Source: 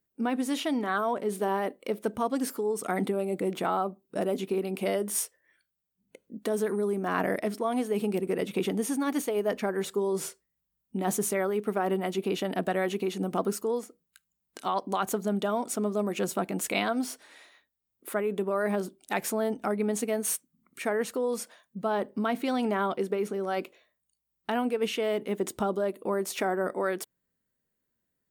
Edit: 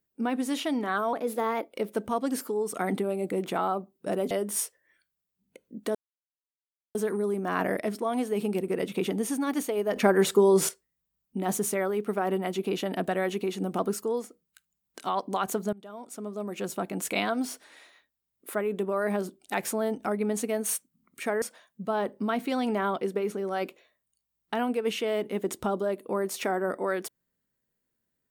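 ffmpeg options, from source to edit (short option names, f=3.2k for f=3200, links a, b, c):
-filter_complex "[0:a]asplit=9[a][b][c][d][e][f][g][h][i];[a]atrim=end=1.134[j];[b]atrim=start=1.13:end=1.83,asetpts=PTS-STARTPTS,asetrate=50715,aresample=44100,atrim=end_sample=26843,asetpts=PTS-STARTPTS[k];[c]atrim=start=1.826:end=4.402[l];[d]atrim=start=4.898:end=6.54,asetpts=PTS-STARTPTS,afade=t=out:st=1.638:d=0.004:c=hsin,apad=pad_dur=1[m];[e]atrim=start=6.54:end=9.552,asetpts=PTS-STARTPTS,afade=t=in:d=0.004:c=hsin[n];[f]atrim=start=9.548:end=10.282,asetpts=PTS-STARTPTS,volume=8.5dB[o];[g]atrim=start=10.278:end=15.32,asetpts=PTS-STARTPTS,afade=t=out:st=5.038:d=0.004:c=hsin:silence=0.0630957[p];[h]atrim=start=15.32:end=21.012,asetpts=PTS-STARTPTS,afade=t=in:d=1.44:silence=0.0630957[q];[i]atrim=start=21.378[r];[j][k]acrossfade=d=0.004:c1=hsin:c2=hsin[s];[s][l]acrossfade=d=0.004:c1=hsin:c2=hsin[t];[m][n]concat=n=2:v=0:a=1[u];[t][u]acrossfade=d=0.004:c1=hsin:c2=hsin[v];[v][o]acrossfade=d=0.004:c1=hsin:c2=hsin[w];[p][q]concat=n=2:v=0:a=1[x];[w][x]acrossfade=d=0.004:c1=hsin:c2=hsin[y];[y][r]acrossfade=d=0.004:c1=hsin:c2=hsin"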